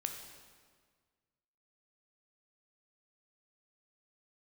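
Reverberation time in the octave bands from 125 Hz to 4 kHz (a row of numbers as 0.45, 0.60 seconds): 2.0, 1.8, 1.7, 1.6, 1.5, 1.4 seconds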